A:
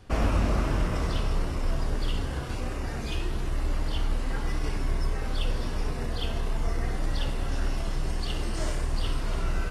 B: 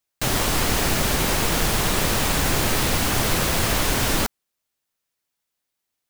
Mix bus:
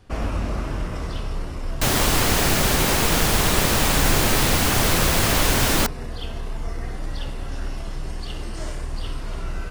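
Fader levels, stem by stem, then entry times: -1.0, +2.0 dB; 0.00, 1.60 s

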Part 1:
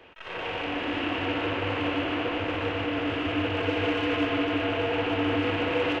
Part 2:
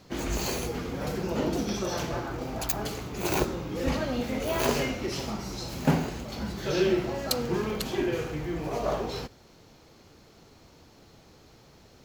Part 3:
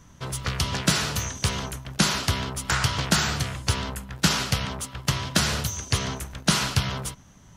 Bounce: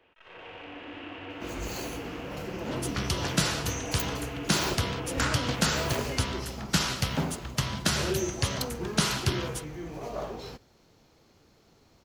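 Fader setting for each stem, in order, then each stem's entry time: -12.5, -6.5, -4.5 dB; 0.00, 1.30, 2.50 s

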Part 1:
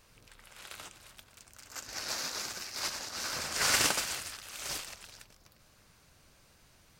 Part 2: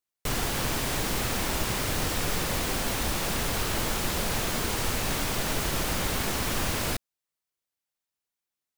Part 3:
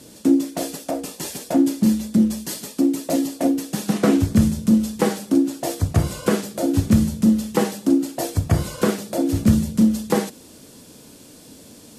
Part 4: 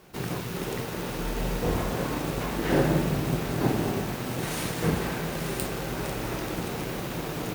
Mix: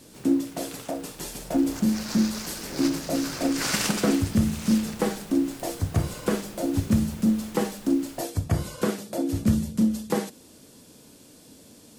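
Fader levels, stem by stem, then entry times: 0.0, -19.5, -6.0, -14.5 dB; 0.00, 1.25, 0.00, 0.00 s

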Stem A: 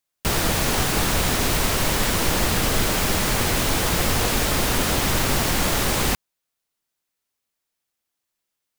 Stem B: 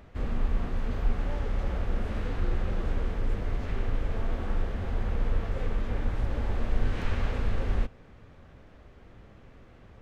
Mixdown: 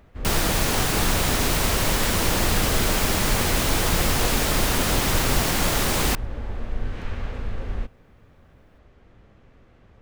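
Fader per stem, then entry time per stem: -1.0, -1.5 dB; 0.00, 0.00 s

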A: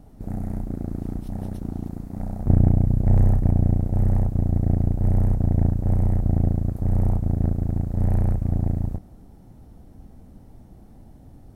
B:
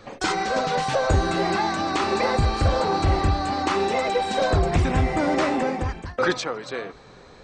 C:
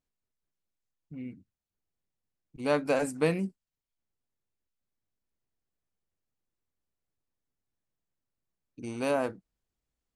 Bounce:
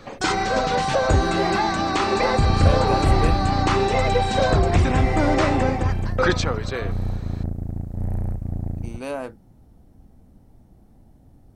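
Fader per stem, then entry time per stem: -5.0, +2.0, -1.5 dB; 0.00, 0.00, 0.00 s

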